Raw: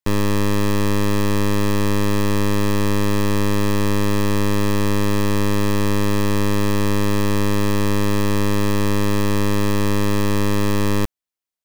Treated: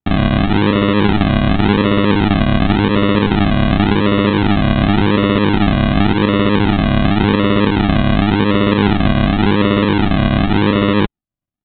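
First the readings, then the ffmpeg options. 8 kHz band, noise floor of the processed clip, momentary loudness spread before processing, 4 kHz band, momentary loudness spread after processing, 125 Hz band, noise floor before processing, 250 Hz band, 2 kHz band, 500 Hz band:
under -40 dB, under -85 dBFS, 0 LU, +7.5 dB, 1 LU, +5.5 dB, under -85 dBFS, +8.0 dB, +7.5 dB, +5.0 dB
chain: -af "highpass=f=79:p=1,aecho=1:1:4.1:0.43,aresample=8000,acrusher=samples=14:mix=1:aa=0.000001:lfo=1:lforange=8.4:lforate=0.9,aresample=44100,volume=2.37"

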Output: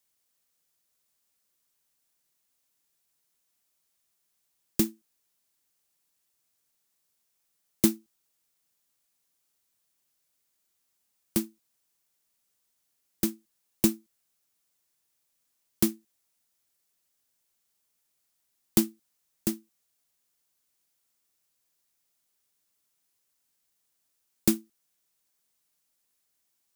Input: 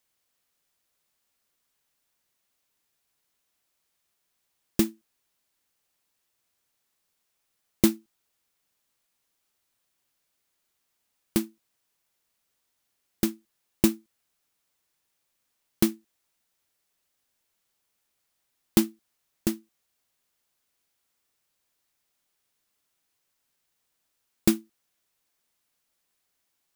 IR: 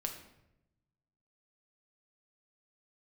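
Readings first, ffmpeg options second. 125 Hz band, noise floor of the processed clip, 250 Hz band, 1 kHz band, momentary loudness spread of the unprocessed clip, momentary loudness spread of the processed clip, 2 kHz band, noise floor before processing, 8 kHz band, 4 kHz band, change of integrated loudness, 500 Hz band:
-2.5 dB, -76 dBFS, -2.5 dB, -4.5 dB, 9 LU, 9 LU, -4.0 dB, -78 dBFS, +1.5 dB, -2.0 dB, -1.5 dB, -3.5 dB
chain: -filter_complex "[0:a]equalizer=f=190:t=o:w=1.7:g=2.5,acrossover=split=280|460|4900[s0][s1][s2][s3];[s3]acontrast=65[s4];[s0][s1][s2][s4]amix=inputs=4:normalize=0,volume=0.596"

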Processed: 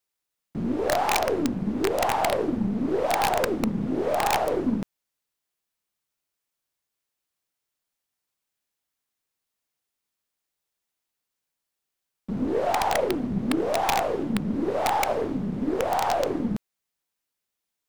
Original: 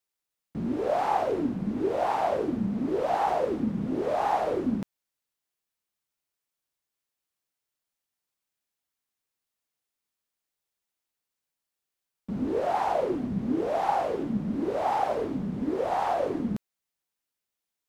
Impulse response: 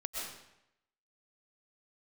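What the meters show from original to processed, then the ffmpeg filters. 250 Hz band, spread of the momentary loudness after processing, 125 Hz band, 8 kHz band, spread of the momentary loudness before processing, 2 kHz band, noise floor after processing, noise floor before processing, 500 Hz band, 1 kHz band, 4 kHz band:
+2.5 dB, 6 LU, +3.0 dB, no reading, 6 LU, +9.0 dB, -84 dBFS, under -85 dBFS, +2.0 dB, +2.0 dB, +12.5 dB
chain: -af "aeval=exprs='0.224*(cos(1*acos(clip(val(0)/0.224,-1,1)))-cos(1*PI/2))+0.0141*(cos(2*acos(clip(val(0)/0.224,-1,1)))-cos(2*PI/2))+0.00398*(cos(6*acos(clip(val(0)/0.224,-1,1)))-cos(6*PI/2))+0.0126*(cos(8*acos(clip(val(0)/0.224,-1,1)))-cos(8*PI/2))':c=same,aeval=exprs='(mod(7.5*val(0)+1,2)-1)/7.5':c=same,volume=1.33"

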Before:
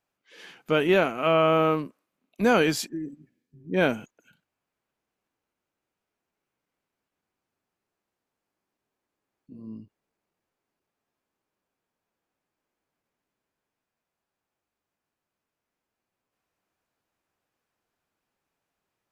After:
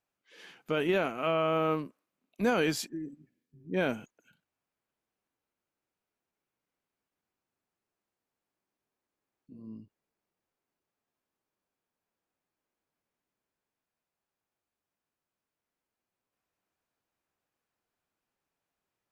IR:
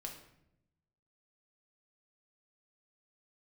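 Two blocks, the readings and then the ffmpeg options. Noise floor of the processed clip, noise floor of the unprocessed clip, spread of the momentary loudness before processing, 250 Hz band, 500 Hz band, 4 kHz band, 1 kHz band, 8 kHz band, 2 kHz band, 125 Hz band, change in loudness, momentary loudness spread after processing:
under -85 dBFS, under -85 dBFS, 20 LU, -6.0 dB, -7.0 dB, -6.5 dB, -7.0 dB, -5.0 dB, -7.0 dB, -6.5 dB, -7.0 dB, 20 LU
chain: -af "alimiter=limit=0.224:level=0:latency=1:release=15,volume=0.562"

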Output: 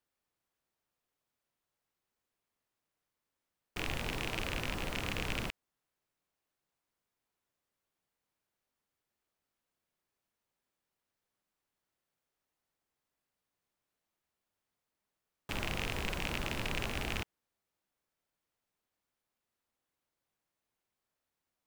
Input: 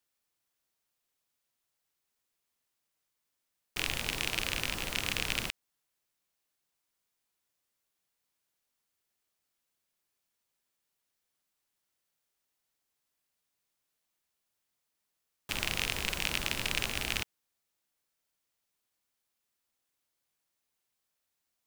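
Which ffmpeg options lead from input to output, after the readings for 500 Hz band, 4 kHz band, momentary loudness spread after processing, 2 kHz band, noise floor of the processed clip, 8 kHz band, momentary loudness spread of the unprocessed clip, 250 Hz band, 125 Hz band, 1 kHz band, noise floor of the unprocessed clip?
+2.0 dB, -7.0 dB, 7 LU, -4.5 dB, under -85 dBFS, -9.5 dB, 6 LU, +2.0 dB, +2.5 dB, 0.0 dB, -84 dBFS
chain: -af "asoftclip=type=tanh:threshold=0.15,highshelf=f=2400:g=-11.5,volume=1.33"

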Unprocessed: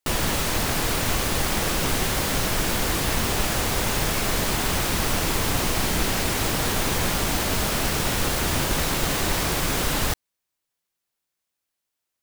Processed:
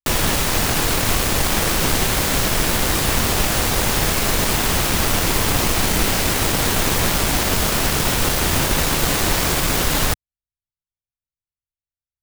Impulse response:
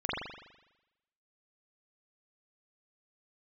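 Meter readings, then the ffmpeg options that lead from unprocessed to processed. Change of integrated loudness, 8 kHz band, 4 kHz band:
+5.5 dB, +6.0 dB, +5.0 dB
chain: -filter_complex "[0:a]acrossover=split=120[s0][s1];[s1]acrusher=bits=3:mix=0:aa=0.5[s2];[s0][s2]amix=inputs=2:normalize=0,volume=1.78"

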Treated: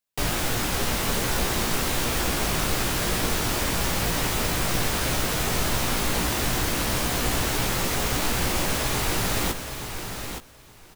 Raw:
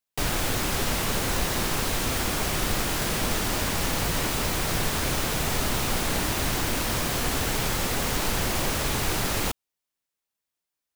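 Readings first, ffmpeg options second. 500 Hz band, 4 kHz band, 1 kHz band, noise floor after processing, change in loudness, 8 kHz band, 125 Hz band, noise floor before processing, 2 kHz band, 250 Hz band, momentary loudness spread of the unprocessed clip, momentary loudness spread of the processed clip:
+1.5 dB, +1.5 dB, +1.5 dB, -49 dBFS, +1.0 dB, +1.5 dB, +1.5 dB, under -85 dBFS, +1.5 dB, +1.5 dB, 0 LU, 3 LU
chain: -filter_complex "[0:a]asplit=2[s0][s1];[s1]adelay=17,volume=0.447[s2];[s0][s2]amix=inputs=2:normalize=0,asplit=2[s3][s4];[s4]aecho=0:1:869|1738:0.398|0.0597[s5];[s3][s5]amix=inputs=2:normalize=0"

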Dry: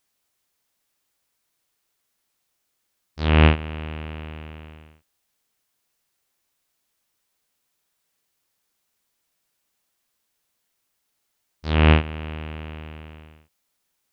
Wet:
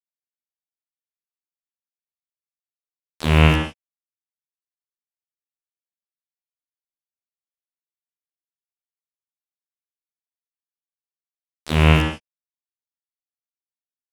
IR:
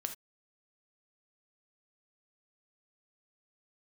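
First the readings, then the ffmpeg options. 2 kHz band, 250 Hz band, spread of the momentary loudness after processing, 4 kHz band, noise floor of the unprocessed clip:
+2.5 dB, +1.5 dB, 12 LU, +3.5 dB, -75 dBFS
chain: -filter_complex "[0:a]aeval=exprs='val(0)*gte(abs(val(0)),0.0944)':c=same[s0];[1:a]atrim=start_sample=2205,asetrate=22932,aresample=44100[s1];[s0][s1]afir=irnorm=-1:irlink=0,volume=0.891"

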